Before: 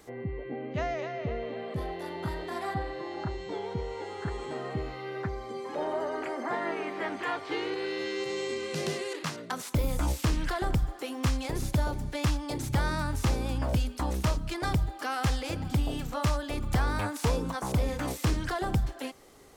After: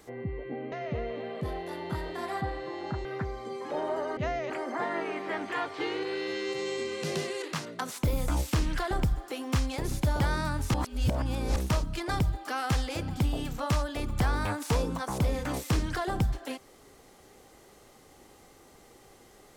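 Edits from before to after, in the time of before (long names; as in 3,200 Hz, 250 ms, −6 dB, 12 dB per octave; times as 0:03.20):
0:00.72–0:01.05: move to 0:06.21
0:03.38–0:05.09: remove
0:11.91–0:12.74: remove
0:13.28–0:14.10: reverse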